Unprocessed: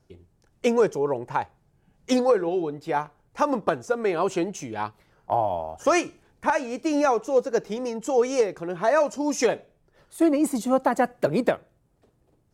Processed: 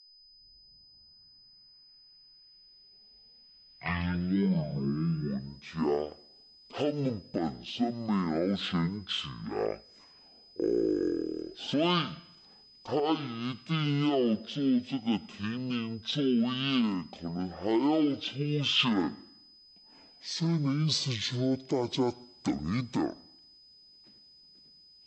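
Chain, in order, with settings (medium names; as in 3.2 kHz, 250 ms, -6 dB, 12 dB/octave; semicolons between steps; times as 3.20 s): tape start-up on the opening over 2.91 s; peak limiter -16.5 dBFS, peak gain reduction 10.5 dB; tone controls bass -13 dB, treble +8 dB; whistle 10 kHz -53 dBFS; speed mistake 15 ips tape played at 7.5 ips; trim -2 dB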